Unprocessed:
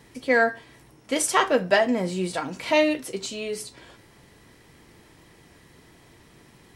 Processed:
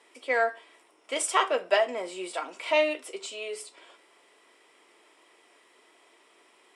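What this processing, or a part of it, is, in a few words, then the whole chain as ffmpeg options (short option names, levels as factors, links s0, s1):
phone speaker on a table: -af "highpass=f=430:w=0.5412,highpass=f=430:w=1.3066,equalizer=f=500:t=q:w=4:g=-6,equalizer=f=830:t=q:w=4:g=-5,equalizer=f=1700:t=q:w=4:g=-8,equalizer=f=4300:t=q:w=4:g=-9,equalizer=f=6200:t=q:w=4:g=-10,lowpass=f=8900:w=0.5412,lowpass=f=8900:w=1.3066"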